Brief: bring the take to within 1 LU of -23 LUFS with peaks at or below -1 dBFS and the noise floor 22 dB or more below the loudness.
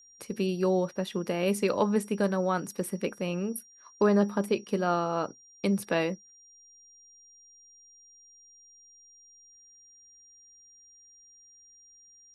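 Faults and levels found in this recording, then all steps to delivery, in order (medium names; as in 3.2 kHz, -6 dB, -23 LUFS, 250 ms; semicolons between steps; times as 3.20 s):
steady tone 5.7 kHz; tone level -54 dBFS; loudness -29.0 LUFS; peak level -12.5 dBFS; loudness target -23.0 LUFS
-> band-stop 5.7 kHz, Q 30; trim +6 dB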